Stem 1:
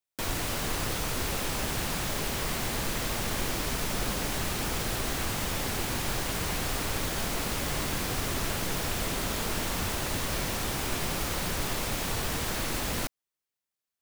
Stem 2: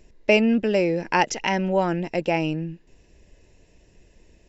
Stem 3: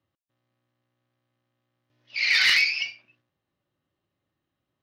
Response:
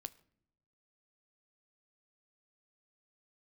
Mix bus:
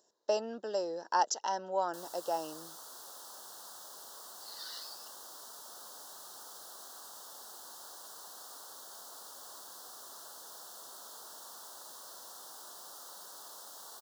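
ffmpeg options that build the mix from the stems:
-filter_complex "[0:a]adelay=1750,volume=-13.5dB[link_01];[1:a]volume=-3.5dB[link_02];[2:a]adelay=2250,volume=-19dB[link_03];[link_01][link_02][link_03]amix=inputs=3:normalize=0,highpass=820,asuperstop=centerf=2300:order=4:qfactor=0.87"

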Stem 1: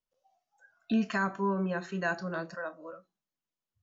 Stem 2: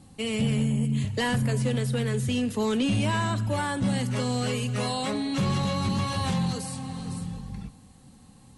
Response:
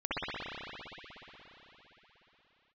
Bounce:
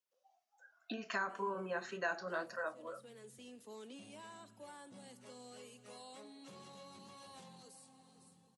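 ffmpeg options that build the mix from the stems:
-filter_complex "[0:a]acompressor=threshold=-30dB:ratio=6,flanger=delay=1.5:depth=6.4:regen=-58:speed=2:shape=triangular,volume=2.5dB,asplit=2[link_01][link_02];[1:a]equalizer=frequency=1900:width_type=o:width=2.2:gain=-7,adelay=1100,volume=-20dB[link_03];[link_02]apad=whole_len=426449[link_04];[link_03][link_04]sidechaincompress=threshold=-45dB:ratio=8:attack=9:release=463[link_05];[link_01][link_05]amix=inputs=2:normalize=0,highpass=390"

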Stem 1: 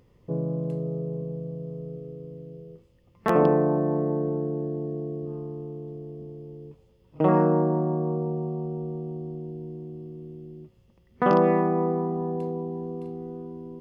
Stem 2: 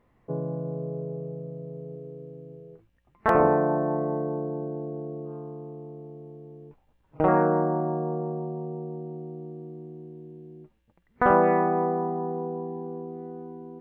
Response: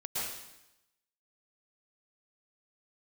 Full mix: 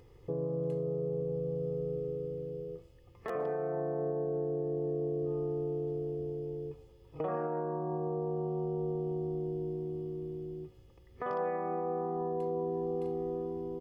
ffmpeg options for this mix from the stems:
-filter_complex "[0:a]aecho=1:1:2.4:0.76,acompressor=threshold=-29dB:ratio=4,volume=0dB[link_01];[1:a]highpass=170,volume=-13dB,asplit=2[link_02][link_03];[link_03]volume=-7.5dB[link_04];[2:a]atrim=start_sample=2205[link_05];[link_04][link_05]afir=irnorm=-1:irlink=0[link_06];[link_01][link_02][link_06]amix=inputs=3:normalize=0,alimiter=level_in=1.5dB:limit=-24dB:level=0:latency=1:release=449,volume=-1.5dB"

